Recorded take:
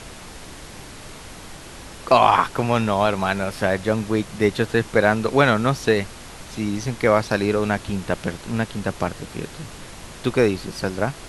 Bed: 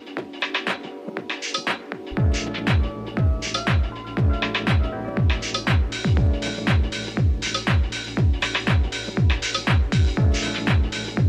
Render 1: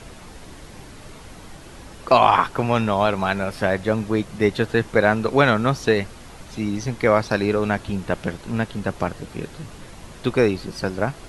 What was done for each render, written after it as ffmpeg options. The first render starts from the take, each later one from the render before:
-af "afftdn=nr=6:nf=-40"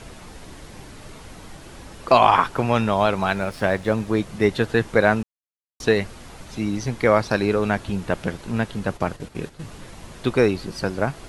-filter_complex "[0:a]asettb=1/sr,asplit=3[s0][s1][s2];[s0]atrim=end=3.304[s3];[s1]atrim=start=3.3:end=4.08,asetpts=PTS-STARTPTS,afade=t=in:d=0.004:c=qsin,afade=t=out:st=0.776:d=0.004:c=qsin,aeval=exprs='sgn(val(0))*max(abs(val(0))-0.00501,0)':c=same[s4];[s2]atrim=start=4.076[s5];[s3][s4]acrossfade=d=0.004:c1=hsin:c2=qsin[s6];[s6][s5]acrossfade=d=0.004:c1=qsin:c2=hsin,asettb=1/sr,asplit=3[s7][s8][s9];[s7]atrim=end=8.864[s10];[s8]atrim=start=8.86:end=9.61,asetpts=PTS-STARTPTS,afade=t=in:d=0.004:c=qsin,afade=t=out:st=0.746:d=0.004:c=qsin,agate=range=0.355:threshold=0.0126:ratio=16:release=100:detection=peak[s11];[s9]atrim=start=9.606[s12];[s10][s11]acrossfade=d=0.004:c1=hsin:c2=qsin[s13];[s13][s12]acrossfade=d=0.004:c1=qsin:c2=hsin,asplit=3[s14][s15][s16];[s14]atrim=end=5.23,asetpts=PTS-STARTPTS,afade=t=out:st=5.226:d=0.004:c=hsin[s17];[s15]atrim=start=5.23:end=5.8,asetpts=PTS-STARTPTS,volume=0[s18];[s16]atrim=start=5.8,asetpts=PTS-STARTPTS,afade=t=in:d=0.004:c=hsin[s19];[s17][s18][s19]concat=n=3:v=0:a=1"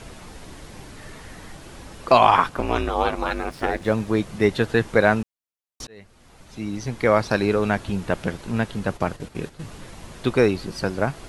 -filter_complex "[0:a]asettb=1/sr,asplit=3[s0][s1][s2];[s0]atrim=end=0.974[s3];[s1]atrim=start=0.97:end=1.52,asetpts=PTS-STARTPTS,afade=t=in:d=0.004:c=qsin,afade=t=out:st=0.546:d=0.004:c=qsin,equalizer=f=1800:t=o:w=0.23:g=10[s4];[s2]atrim=start=1.516[s5];[s3][s4]acrossfade=d=0.004:c1=hsin:c2=qsin[s6];[s6][s5]acrossfade=d=0.004:c1=qsin:c2=hsin,asettb=1/sr,asplit=3[s7][s8][s9];[s7]atrim=end=2.494[s10];[s8]atrim=start=2.49:end=3.82,asetpts=PTS-STARTPTS,afade=t=in:d=0.004:c=qsin,afade=t=out:st=1.326:d=0.004:c=qsin,aeval=exprs='val(0)*sin(2*PI*150*n/s)':c=same[s11];[s9]atrim=start=3.816[s12];[s10][s11]acrossfade=d=0.004:c1=hsin:c2=qsin[s13];[s13][s12]acrossfade=d=0.004:c1=qsin:c2=hsin,asplit=2[s14][s15];[s14]atrim=end=5.87,asetpts=PTS-STARTPTS,afade=t=out:st=5.866:d=0.004:c=hsin[s16];[s15]atrim=start=5.87,asetpts=PTS-STARTPTS,afade=t=in:d=1.38[s17];[s16][s17]concat=n=2:v=0:a=1"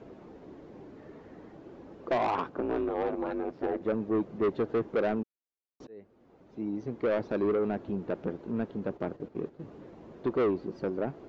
-af "bandpass=f=360:t=q:w=1.5:csg=0,aresample=16000,asoftclip=type=tanh:threshold=0.075,aresample=44100"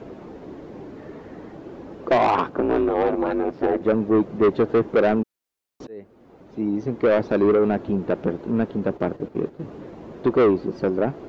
-af "volume=3.16"

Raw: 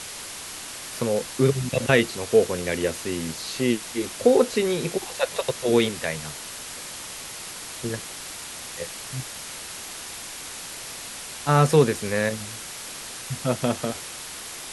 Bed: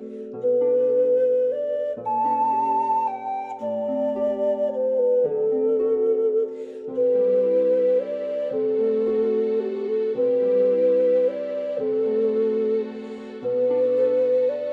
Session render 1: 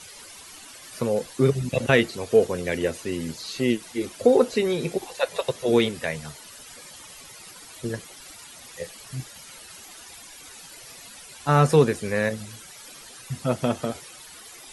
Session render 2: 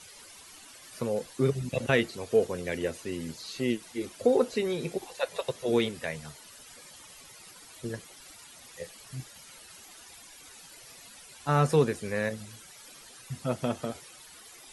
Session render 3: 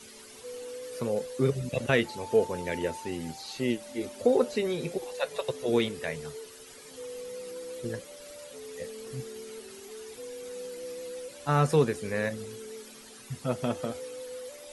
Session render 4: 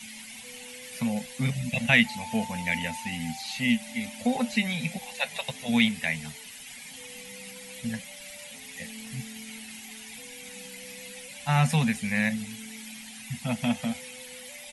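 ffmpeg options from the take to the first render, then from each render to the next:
-af "afftdn=nr=13:nf=-37"
-af "volume=0.501"
-filter_complex "[1:a]volume=0.0891[s0];[0:a][s0]amix=inputs=2:normalize=0"
-af "firequalizer=gain_entry='entry(110,0);entry(230,11);entry(330,-29);entry(520,-9);entry(780,5);entry(1200,-6);entry(2100,13);entry(4600,3);entry(7200,5);entry(13000,7)':delay=0.05:min_phase=1"

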